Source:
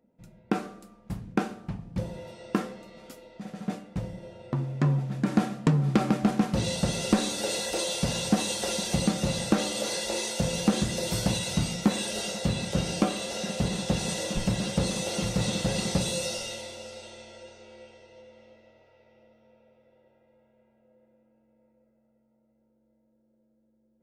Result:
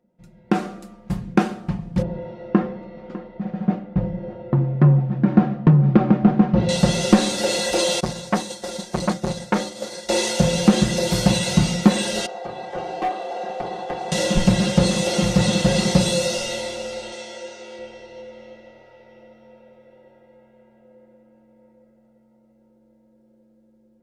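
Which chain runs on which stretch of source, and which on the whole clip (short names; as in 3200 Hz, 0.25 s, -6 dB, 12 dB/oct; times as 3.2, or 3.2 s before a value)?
2.02–6.69 tape spacing loss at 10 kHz 41 dB + echo 0.601 s -16.5 dB
8–10.09 expander -23 dBFS + bell 2800 Hz -6.5 dB 0.48 oct + core saturation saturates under 1200 Hz
12.26–14.12 band-pass 760 Hz, Q 2.2 + hard clip -33.5 dBFS + comb 2.6 ms, depth 50%
17.12–17.79 HPF 270 Hz 6 dB/oct + high shelf 5300 Hz +7 dB
whole clip: high shelf 9400 Hz -7.5 dB; comb 5.6 ms, depth 48%; AGC gain up to 10.5 dB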